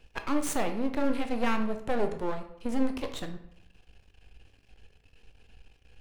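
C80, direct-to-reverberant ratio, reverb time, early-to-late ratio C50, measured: 13.5 dB, 6.0 dB, 0.70 s, 10.0 dB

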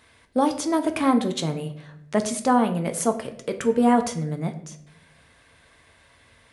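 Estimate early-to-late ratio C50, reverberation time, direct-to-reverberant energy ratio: 12.0 dB, 0.75 s, 6.0 dB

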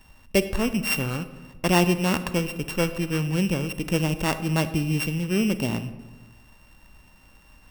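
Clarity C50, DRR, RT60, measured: 12.5 dB, 11.5 dB, 1.3 s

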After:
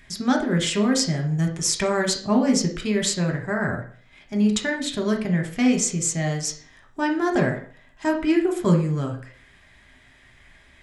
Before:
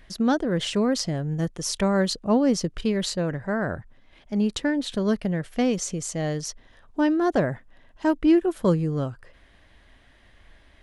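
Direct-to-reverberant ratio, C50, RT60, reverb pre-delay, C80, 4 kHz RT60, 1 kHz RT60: 2.0 dB, 9.0 dB, 0.50 s, 3 ms, 14.5 dB, 0.40 s, 0.50 s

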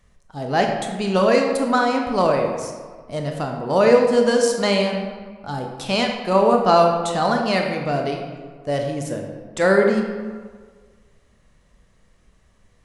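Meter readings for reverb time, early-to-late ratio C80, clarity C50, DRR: 1.6 s, 5.5 dB, 4.0 dB, 2.0 dB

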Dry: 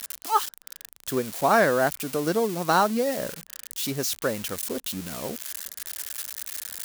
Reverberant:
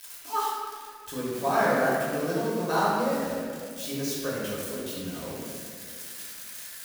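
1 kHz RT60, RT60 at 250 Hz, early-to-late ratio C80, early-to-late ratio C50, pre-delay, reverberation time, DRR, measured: 1.8 s, 2.5 s, 0.0 dB, -2.0 dB, 3 ms, 2.1 s, -8.0 dB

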